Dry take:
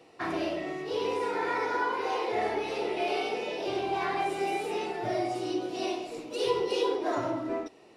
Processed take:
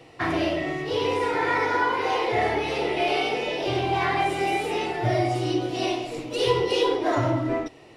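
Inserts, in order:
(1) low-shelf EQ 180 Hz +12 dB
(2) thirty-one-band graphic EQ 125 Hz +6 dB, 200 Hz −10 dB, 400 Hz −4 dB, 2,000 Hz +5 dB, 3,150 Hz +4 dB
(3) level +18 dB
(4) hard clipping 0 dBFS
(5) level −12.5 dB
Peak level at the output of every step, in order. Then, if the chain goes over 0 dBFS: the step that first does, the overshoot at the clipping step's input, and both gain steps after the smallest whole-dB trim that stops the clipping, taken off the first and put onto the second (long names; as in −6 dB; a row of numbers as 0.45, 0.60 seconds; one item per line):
−14.0, −15.0, +3.0, 0.0, −12.5 dBFS
step 3, 3.0 dB
step 3 +15 dB, step 5 −9.5 dB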